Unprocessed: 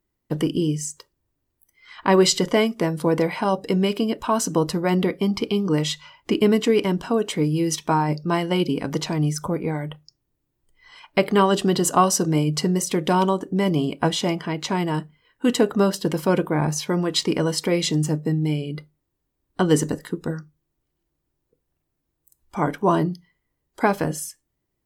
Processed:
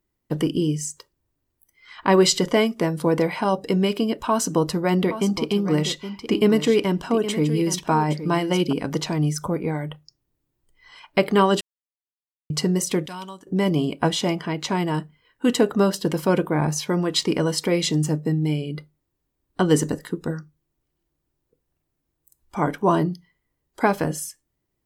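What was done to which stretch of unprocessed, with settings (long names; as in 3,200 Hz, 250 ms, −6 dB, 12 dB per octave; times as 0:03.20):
0:04.29–0:08.73: single-tap delay 819 ms −11.5 dB
0:11.61–0:12.50: silence
0:13.06–0:13.47: guitar amp tone stack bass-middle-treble 5-5-5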